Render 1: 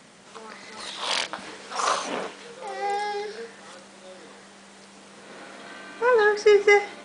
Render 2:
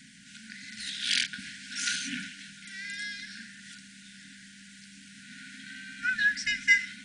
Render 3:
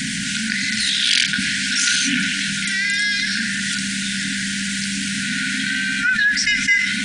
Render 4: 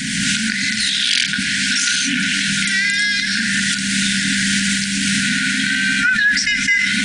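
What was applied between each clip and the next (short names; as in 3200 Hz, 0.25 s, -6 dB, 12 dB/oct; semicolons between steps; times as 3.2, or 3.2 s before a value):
FFT band-reject 290–1400 Hz
fast leveller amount 70%; gain +3.5 dB
recorder AGC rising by 26 dB/s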